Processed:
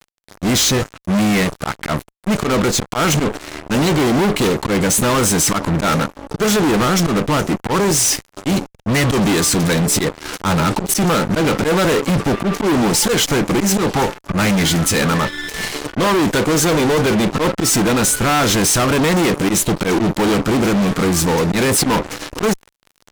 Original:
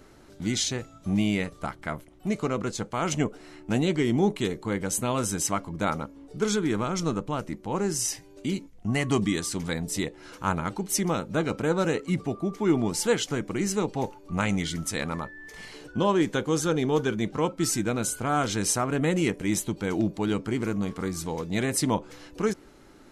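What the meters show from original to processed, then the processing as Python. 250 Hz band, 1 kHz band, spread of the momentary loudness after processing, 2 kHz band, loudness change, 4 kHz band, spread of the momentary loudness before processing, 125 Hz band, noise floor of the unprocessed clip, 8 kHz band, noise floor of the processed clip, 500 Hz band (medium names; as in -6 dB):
+10.5 dB, +12.0 dB, 7 LU, +13.0 dB, +11.5 dB, +14.5 dB, 8 LU, +11.0 dB, -52 dBFS, +13.0 dB, -58 dBFS, +10.5 dB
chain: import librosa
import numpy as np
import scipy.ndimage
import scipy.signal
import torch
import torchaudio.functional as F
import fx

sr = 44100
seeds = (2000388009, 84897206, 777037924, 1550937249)

y = fx.auto_swell(x, sr, attack_ms=102.0)
y = fx.fuzz(y, sr, gain_db=40.0, gate_db=-44.0)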